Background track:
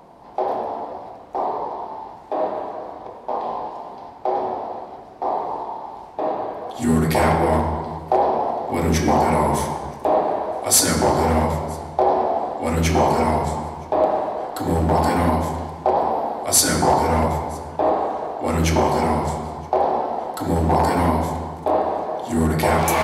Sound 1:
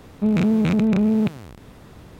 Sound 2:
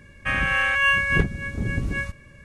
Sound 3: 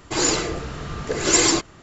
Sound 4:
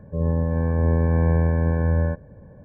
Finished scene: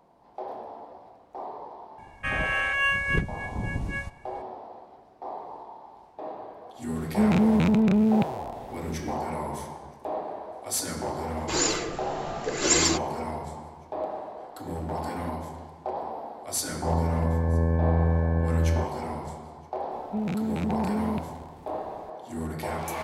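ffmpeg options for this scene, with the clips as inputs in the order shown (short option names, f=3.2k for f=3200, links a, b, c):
-filter_complex "[1:a]asplit=2[a][b];[0:a]volume=-14dB[c];[3:a]equalizer=f=70:t=o:w=1.1:g=-14[d];[2:a]atrim=end=2.44,asetpts=PTS-STARTPTS,volume=-5dB,afade=t=in:d=0.004:c=hsin,afade=t=out:st=2.436:d=0.004:c=hsin,adelay=1980[e];[a]atrim=end=2.19,asetpts=PTS-STARTPTS,volume=-2.5dB,afade=t=in:d=0.004:c=hsin,afade=t=out:st=2.186:d=0.004:c=hsin,adelay=6950[f];[d]atrim=end=1.82,asetpts=PTS-STARTPTS,volume=-4.5dB,afade=t=in:d=0.004:c=hsin,afade=t=out:st=1.816:d=0.004:c=hsin,adelay=11370[g];[4:a]atrim=end=2.64,asetpts=PTS-STARTPTS,volume=-4dB,afade=t=in:d=0.004:c=hsin,afade=t=out:st=2.636:d=0.004:c=hsin,adelay=16700[h];[b]atrim=end=2.19,asetpts=PTS-STARTPTS,volume=-10.5dB,afade=t=in:d=0.004:c=hsin,afade=t=out:st=2.186:d=0.004:c=hsin,adelay=19910[i];[c][e][f][g][h][i]amix=inputs=6:normalize=0"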